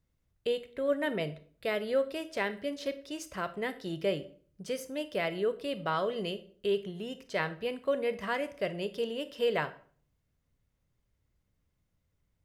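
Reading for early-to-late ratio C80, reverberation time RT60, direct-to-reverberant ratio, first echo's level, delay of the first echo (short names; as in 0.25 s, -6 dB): 19.5 dB, 0.50 s, 12.0 dB, none, none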